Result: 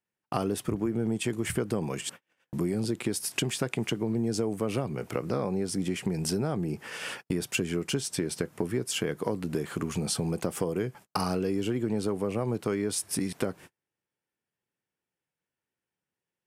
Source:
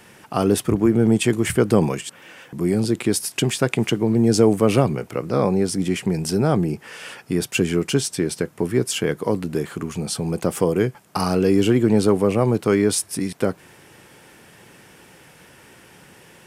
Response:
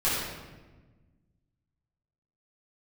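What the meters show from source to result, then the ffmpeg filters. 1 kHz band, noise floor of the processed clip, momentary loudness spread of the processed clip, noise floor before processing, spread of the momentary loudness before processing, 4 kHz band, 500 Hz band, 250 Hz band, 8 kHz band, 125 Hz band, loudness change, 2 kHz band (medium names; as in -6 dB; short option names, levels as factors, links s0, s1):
-9.5 dB, under -85 dBFS, 4 LU, -49 dBFS, 10 LU, -7.0 dB, -11.0 dB, -10.5 dB, -7.0 dB, -10.0 dB, -10.0 dB, -8.0 dB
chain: -af "agate=range=0.00708:threshold=0.0126:ratio=16:detection=peak,acompressor=threshold=0.0501:ratio=6"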